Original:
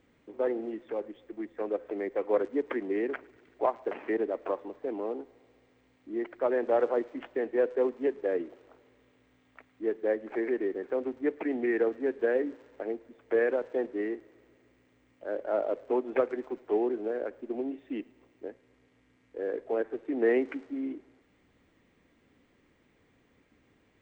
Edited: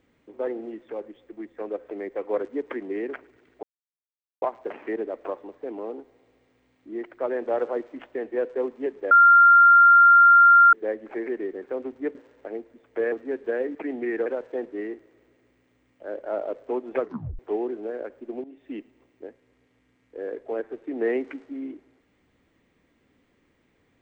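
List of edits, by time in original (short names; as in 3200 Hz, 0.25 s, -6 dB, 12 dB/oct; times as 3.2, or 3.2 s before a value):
3.63 insert silence 0.79 s
8.32–9.94 bleep 1390 Hz -10 dBFS
11.36–11.87 swap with 12.5–13.47
16.22 tape stop 0.38 s
17.65–17.9 fade in, from -16 dB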